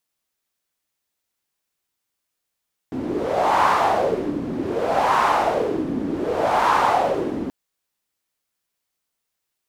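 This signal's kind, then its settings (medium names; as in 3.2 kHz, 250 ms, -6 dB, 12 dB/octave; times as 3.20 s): wind-like swept noise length 4.58 s, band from 270 Hz, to 1 kHz, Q 4, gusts 3, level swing 9 dB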